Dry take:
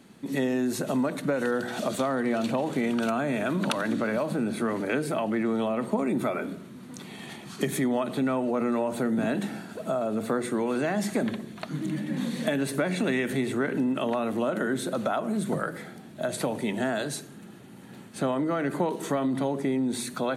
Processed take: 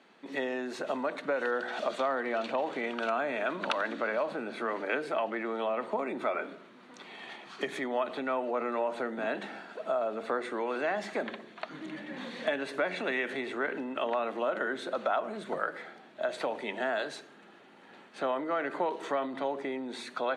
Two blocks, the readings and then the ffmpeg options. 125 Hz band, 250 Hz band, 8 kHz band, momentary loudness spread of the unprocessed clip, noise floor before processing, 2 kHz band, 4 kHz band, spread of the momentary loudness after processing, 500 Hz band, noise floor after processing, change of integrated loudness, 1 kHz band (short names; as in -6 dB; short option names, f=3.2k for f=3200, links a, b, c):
-20.0 dB, -12.0 dB, under -15 dB, 10 LU, -46 dBFS, -0.5 dB, -3.5 dB, 10 LU, -3.0 dB, -55 dBFS, -5.0 dB, -0.5 dB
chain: -af "highpass=520,lowpass=3.4k"